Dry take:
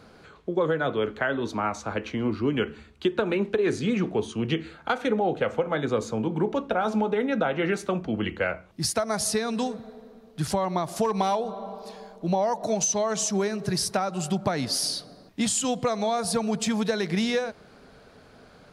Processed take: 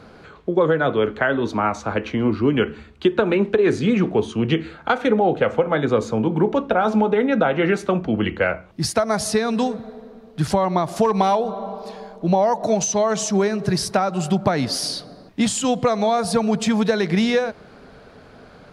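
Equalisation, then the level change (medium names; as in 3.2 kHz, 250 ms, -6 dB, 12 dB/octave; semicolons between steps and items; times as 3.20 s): treble shelf 4.9 kHz -9 dB; +7.0 dB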